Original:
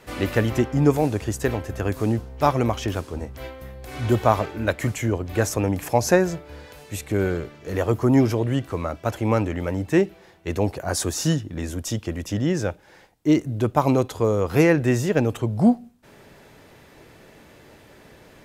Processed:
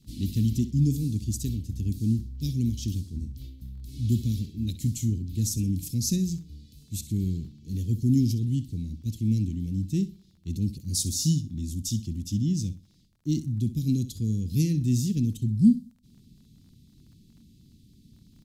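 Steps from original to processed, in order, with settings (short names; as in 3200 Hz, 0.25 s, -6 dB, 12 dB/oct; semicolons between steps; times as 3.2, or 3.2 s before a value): elliptic band-stop 230–4000 Hz, stop band 60 dB; feedback echo 64 ms, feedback 25%, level -14 dB; crackle 19/s -47 dBFS; mismatched tape noise reduction decoder only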